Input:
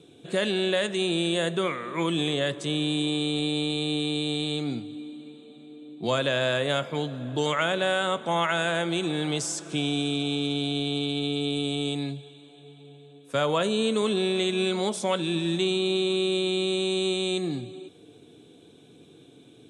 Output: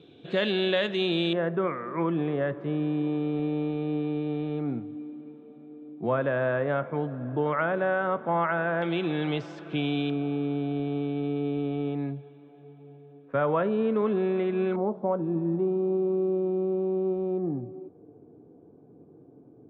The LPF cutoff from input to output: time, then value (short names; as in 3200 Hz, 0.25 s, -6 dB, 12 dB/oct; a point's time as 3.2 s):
LPF 24 dB/oct
4100 Hz
from 1.33 s 1700 Hz
from 8.82 s 2900 Hz
from 10.1 s 1800 Hz
from 14.76 s 1000 Hz